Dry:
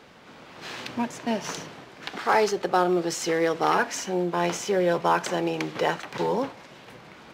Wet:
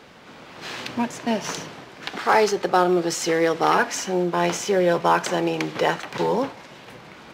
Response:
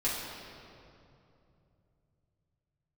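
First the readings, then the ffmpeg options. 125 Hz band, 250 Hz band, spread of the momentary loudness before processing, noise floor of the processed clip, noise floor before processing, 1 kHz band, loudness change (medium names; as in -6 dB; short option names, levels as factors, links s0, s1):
+3.5 dB, +3.5 dB, 14 LU, -45 dBFS, -48 dBFS, +3.5 dB, +3.5 dB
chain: -filter_complex "[0:a]asplit=2[s0][s1];[s1]highpass=1300[s2];[1:a]atrim=start_sample=2205[s3];[s2][s3]afir=irnorm=-1:irlink=0,volume=0.0631[s4];[s0][s4]amix=inputs=2:normalize=0,volume=1.5"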